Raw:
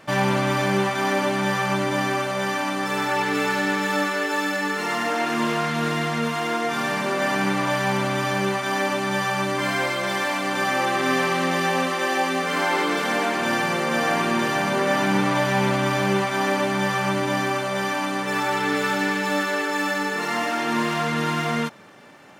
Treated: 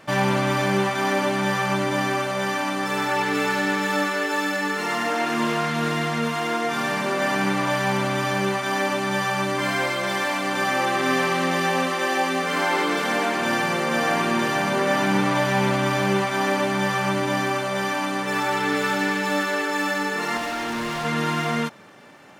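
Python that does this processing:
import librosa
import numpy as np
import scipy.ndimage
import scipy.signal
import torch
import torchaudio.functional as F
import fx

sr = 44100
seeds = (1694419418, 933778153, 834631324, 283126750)

y = fx.overload_stage(x, sr, gain_db=25.0, at=(20.37, 21.05))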